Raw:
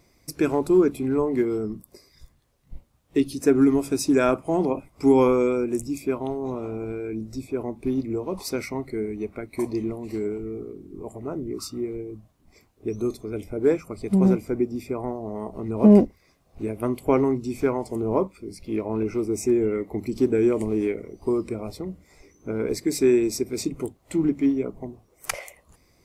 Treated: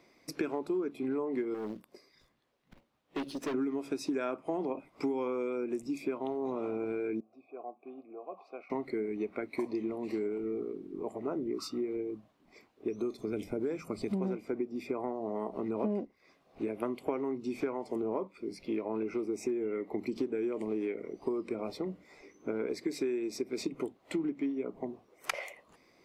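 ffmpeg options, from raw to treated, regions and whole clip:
-filter_complex "[0:a]asettb=1/sr,asplit=3[a][b][c];[a]atrim=end=1.544[d];[b]atrim=start=1.54:end=3.54,asetpts=PTS-STARTPTS,afade=t=in:d=0.004:c=qsin,afade=t=out:st=1.996:d=0.004:c=qsin,aeval=exprs='(tanh(28.2*val(0)+0.75)-tanh(0.75))/28.2':c=same,acrusher=bits=6:mode=log:mix=0:aa=0.000001[e];[c]atrim=start=3.536[f];[d][e]acrossfade=d=0.004:c1=hsin:c2=qsin[g];[g][f]acrossfade=d=0.004:c1=qsin:c2=hsin,asettb=1/sr,asplit=3[h][i][j];[h]atrim=end=7.204[k];[i]atrim=start=7.2:end=8.7,asetpts=PTS-STARTPTS,afade=t=in:d=0.004:c=qsin,afade=t=out:st=1.496:d=0.004:c=qsin,asplit=3[l][m][n];[l]bandpass=f=730:t=q:w=8,volume=0dB[o];[m]bandpass=f=1.09k:t=q:w=8,volume=-6dB[p];[n]bandpass=f=2.44k:t=q:w=8,volume=-9dB[q];[o][p][q]amix=inputs=3:normalize=0,highshelf=f=2.4k:g=-11[r];[j]atrim=start=8.696[s];[k][r]acrossfade=d=0.004:c1=hsin:c2=qsin[t];[t][s]acrossfade=d=0.004:c1=qsin:c2=hsin,asettb=1/sr,asplit=3[u][v][w];[u]atrim=end=13.184[x];[v]atrim=start=13.18:end=14.13,asetpts=PTS-STARTPTS,afade=t=in:d=0.004:c=qsin,afade=t=out:st=0.946:d=0.004:c=qsin,bass=f=250:g=9,treble=f=4k:g=9,acompressor=threshold=-25dB:ratio=2:attack=3.2:release=140:knee=1:detection=peak[y];[w]atrim=start=14.126[z];[x][y]acrossfade=d=0.004:c1=hsin:c2=qsin[aa];[aa][z]acrossfade=d=0.004:c1=qsin:c2=hsin,acrossover=split=190 4000:gain=0.0891 1 0.0708[ab][ac][ad];[ab][ac][ad]amix=inputs=3:normalize=0,acompressor=threshold=-30dB:ratio=10,highshelf=f=5.1k:g=10.5"

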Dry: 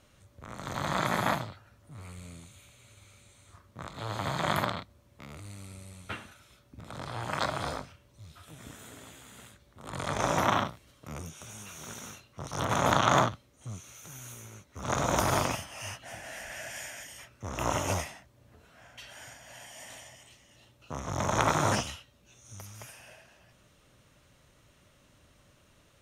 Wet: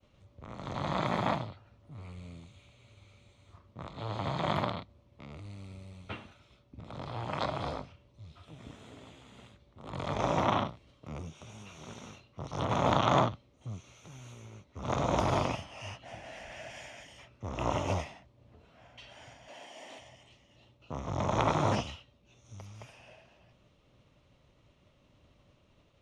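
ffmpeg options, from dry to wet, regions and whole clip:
-filter_complex "[0:a]asettb=1/sr,asplit=3[a][b][c];[a]atrim=end=19.484[d];[b]atrim=start=19.48:end=19.99,asetpts=PTS-STARTPTS,afade=t=in:d=0.004:c=qsin,afade=t=out:st=0.506:d=0.004:c=qsin,aeval=exprs='val(0)+0.5*0.00299*sgn(val(0))':c=same,highpass=f=310:t=q:w=1.6[e];[c]atrim=start=19.986[f];[d][e]acrossfade=d=0.004:c1=hsin:c2=qsin[g];[g][f]acrossfade=d=0.004:c1=qsin:c2=hsin,lowpass=3.5k,agate=range=-33dB:threshold=-60dB:ratio=3:detection=peak,equalizer=f=1.6k:w=2.1:g=-9.5"

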